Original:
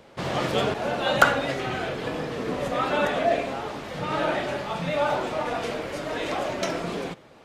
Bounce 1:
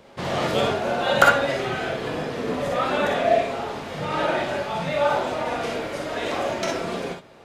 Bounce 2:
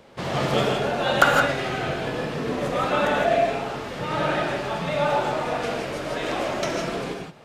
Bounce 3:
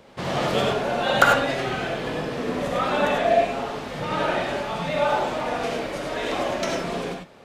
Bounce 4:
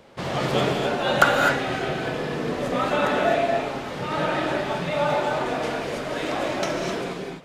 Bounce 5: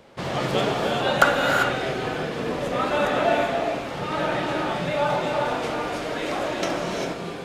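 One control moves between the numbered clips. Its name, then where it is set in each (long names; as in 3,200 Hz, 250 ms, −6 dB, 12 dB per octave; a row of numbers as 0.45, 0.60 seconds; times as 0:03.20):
reverb whose tail is shaped and stops, gate: 80, 190, 120, 280, 420 milliseconds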